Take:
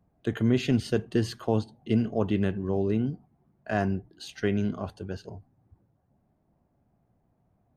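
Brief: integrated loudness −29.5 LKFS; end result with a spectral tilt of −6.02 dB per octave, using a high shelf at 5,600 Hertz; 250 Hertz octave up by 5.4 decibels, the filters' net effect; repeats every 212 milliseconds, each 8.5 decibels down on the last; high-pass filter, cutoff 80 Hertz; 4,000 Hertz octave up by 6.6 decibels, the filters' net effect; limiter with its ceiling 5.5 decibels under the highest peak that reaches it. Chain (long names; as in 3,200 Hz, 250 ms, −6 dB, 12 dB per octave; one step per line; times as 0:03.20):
high-pass filter 80 Hz
parametric band 250 Hz +6.5 dB
parametric band 4,000 Hz +7 dB
high-shelf EQ 5,600 Hz +3.5 dB
brickwall limiter −14 dBFS
repeating echo 212 ms, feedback 38%, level −8.5 dB
level −3 dB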